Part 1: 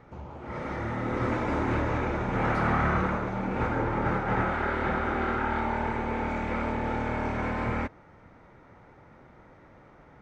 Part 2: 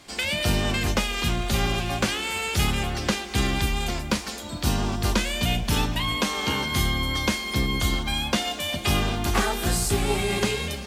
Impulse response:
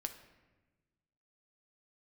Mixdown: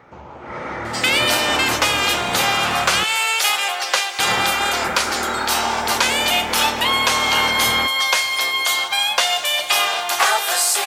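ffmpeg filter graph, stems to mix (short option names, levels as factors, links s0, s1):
-filter_complex "[0:a]highpass=55,lowshelf=f=350:g=-11.5,alimiter=limit=0.0708:level=0:latency=1:release=312,volume=1.12,asplit=3[s0][s1][s2];[s0]atrim=end=3.04,asetpts=PTS-STARTPTS,afade=t=out:st=3.036:d=0.004:c=hsin[s3];[s1]atrim=start=3.04:end=4.19,asetpts=PTS-STARTPTS,volume=0[s4];[s2]atrim=start=4.19,asetpts=PTS-STARTPTS,afade=t=in:d=0.004:c=hsin[s5];[s3][s4][s5]concat=n=3:v=0:a=1,asplit=2[s6][s7];[s7]volume=0.335[s8];[1:a]highpass=f=630:w=0.5412,highpass=f=630:w=1.3066,adelay=850,volume=1.19,asplit=2[s9][s10];[s10]volume=0.355[s11];[2:a]atrim=start_sample=2205[s12];[s8][s11]amix=inputs=2:normalize=0[s13];[s13][s12]afir=irnorm=-1:irlink=0[s14];[s6][s9][s14]amix=inputs=3:normalize=0,acontrast=63"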